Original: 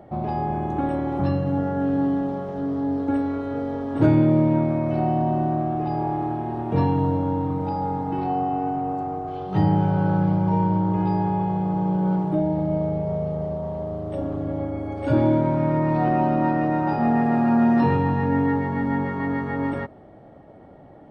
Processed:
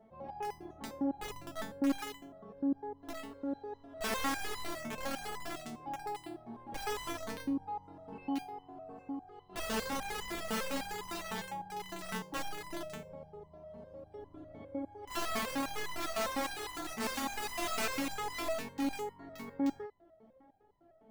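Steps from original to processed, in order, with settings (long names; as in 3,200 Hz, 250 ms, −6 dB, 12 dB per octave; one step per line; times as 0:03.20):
0:00.73–0:03.02: high-shelf EQ 2,400 Hz −11 dB
wrap-around overflow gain 15.5 dB
step-sequenced resonator 9.9 Hz 220–1,000 Hz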